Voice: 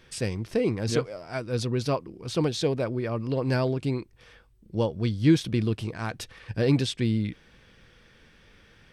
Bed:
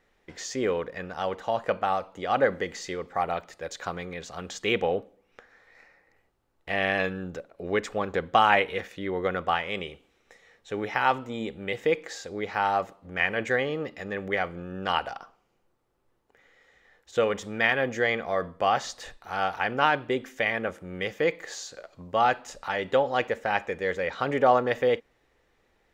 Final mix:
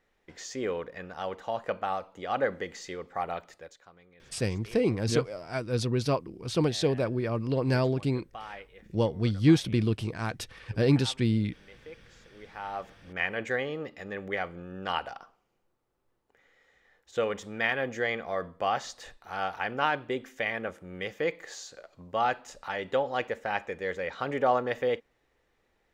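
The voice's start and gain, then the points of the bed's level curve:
4.20 s, -0.5 dB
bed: 3.55 s -5 dB
3.84 s -22.5 dB
12.17 s -22.5 dB
13.05 s -4.5 dB

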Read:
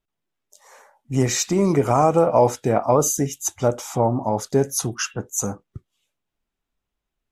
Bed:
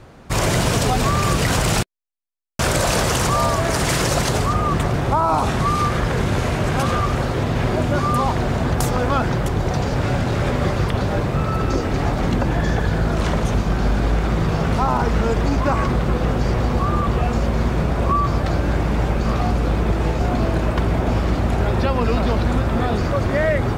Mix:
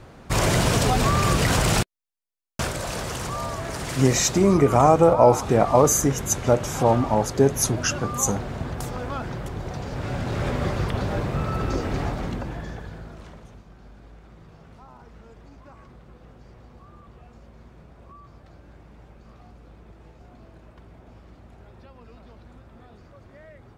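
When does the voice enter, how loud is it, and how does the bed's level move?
2.85 s, +1.0 dB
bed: 2.53 s -2 dB
2.73 s -11.5 dB
9.83 s -11.5 dB
10.44 s -5.5 dB
11.97 s -5.5 dB
13.68 s -29 dB

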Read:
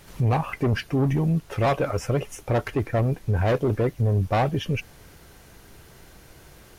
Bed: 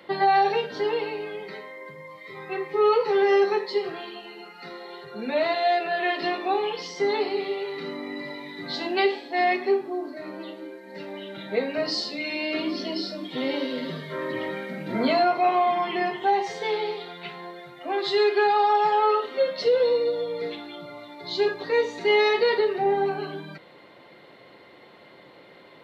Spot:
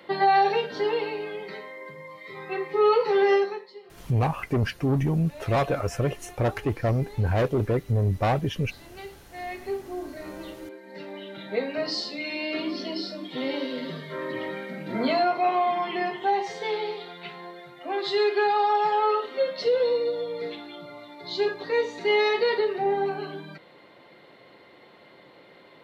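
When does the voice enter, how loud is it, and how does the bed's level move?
3.90 s, -1.5 dB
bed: 3.33 s 0 dB
3.75 s -19.5 dB
9.14 s -19.5 dB
10.08 s -2 dB

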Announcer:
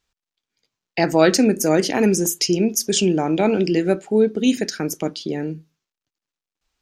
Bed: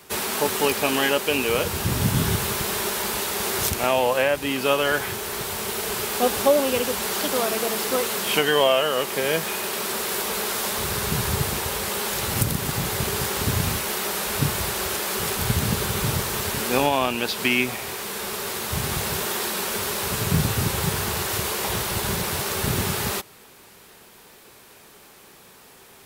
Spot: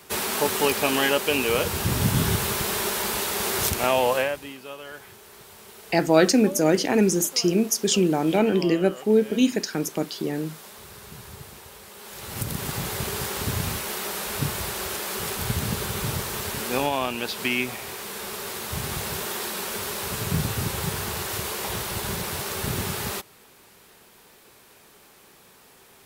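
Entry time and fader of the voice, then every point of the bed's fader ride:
4.95 s, -2.5 dB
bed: 4.15 s -0.5 dB
4.62 s -18 dB
11.94 s -18 dB
12.59 s -4 dB

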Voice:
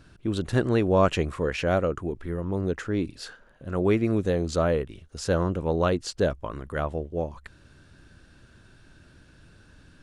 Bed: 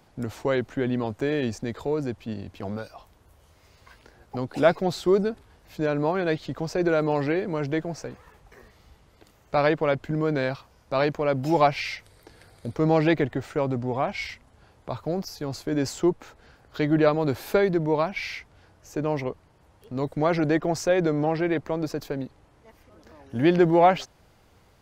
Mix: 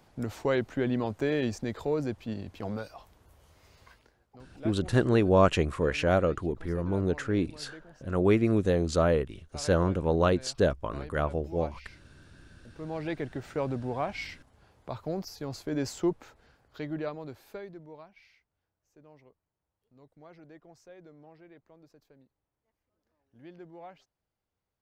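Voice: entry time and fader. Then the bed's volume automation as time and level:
4.40 s, -0.5 dB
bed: 3.83 s -2.5 dB
4.4 s -22.5 dB
12.53 s -22.5 dB
13.52 s -5.5 dB
16.21 s -5.5 dB
18.38 s -29.5 dB

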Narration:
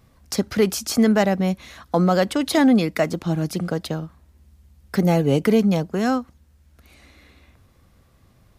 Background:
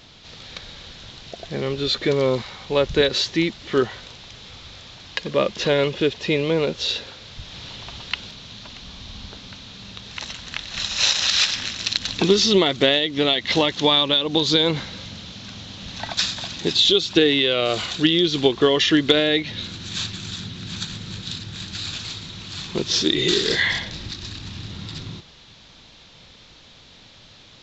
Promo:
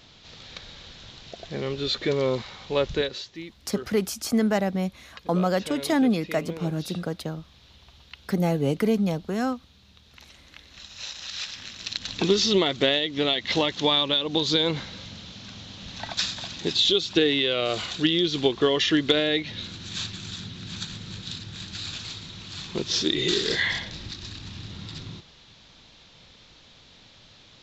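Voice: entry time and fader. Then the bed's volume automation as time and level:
3.35 s, -5.5 dB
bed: 2.91 s -4.5 dB
3.3 s -18 dB
11.15 s -18 dB
12.26 s -4.5 dB

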